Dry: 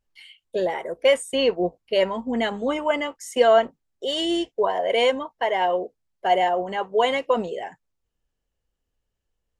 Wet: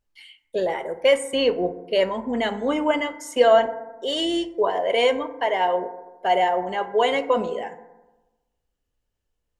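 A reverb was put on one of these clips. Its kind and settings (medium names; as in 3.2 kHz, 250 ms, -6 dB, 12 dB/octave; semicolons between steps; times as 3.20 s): FDN reverb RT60 1.1 s, low-frequency decay 1.1×, high-frequency decay 0.35×, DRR 10 dB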